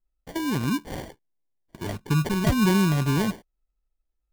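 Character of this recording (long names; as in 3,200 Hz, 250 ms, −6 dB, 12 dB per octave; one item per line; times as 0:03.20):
phaser sweep stages 8, 0.75 Hz, lowest notch 490–1,700 Hz
aliases and images of a low sample rate 1,300 Hz, jitter 0%
AAC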